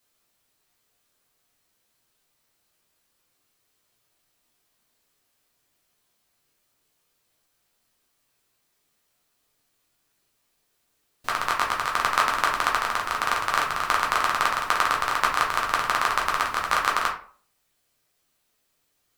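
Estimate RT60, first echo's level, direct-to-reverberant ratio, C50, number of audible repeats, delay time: 0.45 s, none, -2.0 dB, 7.5 dB, none, none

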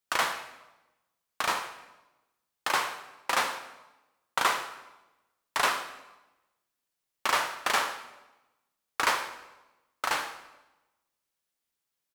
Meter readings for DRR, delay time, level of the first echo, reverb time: 7.0 dB, 76 ms, -15.0 dB, 1.0 s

